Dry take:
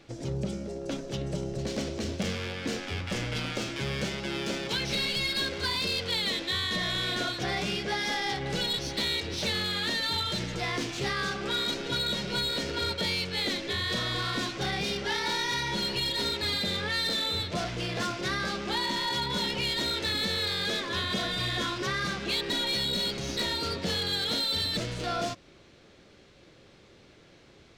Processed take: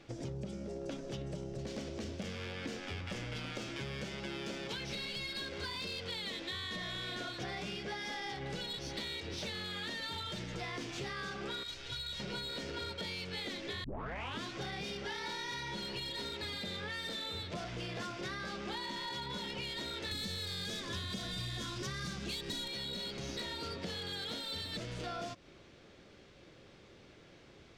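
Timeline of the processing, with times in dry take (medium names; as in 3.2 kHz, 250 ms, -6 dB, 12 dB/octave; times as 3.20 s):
11.63–12.20 s: FFT filter 110 Hz 0 dB, 190 Hz -21 dB, 3.3 kHz -3 dB
13.84 s: tape start 0.60 s
20.11–22.68 s: tone controls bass +10 dB, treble +12 dB
whole clip: treble shelf 9.4 kHz -7 dB; band-stop 4.1 kHz, Q 23; compression, threshold -36 dBFS; trim -2 dB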